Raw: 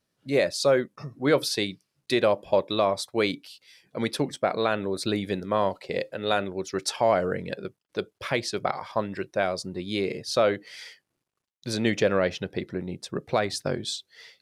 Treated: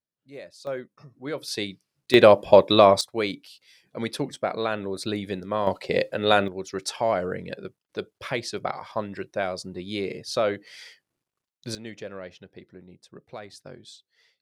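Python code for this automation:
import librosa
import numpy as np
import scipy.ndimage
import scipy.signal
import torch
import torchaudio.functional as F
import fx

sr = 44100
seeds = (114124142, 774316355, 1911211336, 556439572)

y = fx.gain(x, sr, db=fx.steps((0.0, -18.5), (0.67, -10.5), (1.48, -2.5), (2.14, 8.5), (3.01, -2.0), (5.67, 5.5), (6.48, -2.0), (11.75, -15.0)))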